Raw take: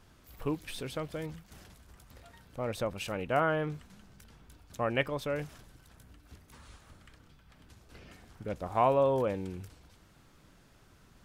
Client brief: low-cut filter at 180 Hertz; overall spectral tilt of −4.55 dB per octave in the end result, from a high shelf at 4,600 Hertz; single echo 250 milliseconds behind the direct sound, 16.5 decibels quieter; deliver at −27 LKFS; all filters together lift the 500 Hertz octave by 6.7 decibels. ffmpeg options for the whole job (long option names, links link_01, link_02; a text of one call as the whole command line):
ffmpeg -i in.wav -af "highpass=180,equalizer=frequency=500:width_type=o:gain=8,highshelf=frequency=4600:gain=-7,aecho=1:1:250:0.15,volume=1dB" out.wav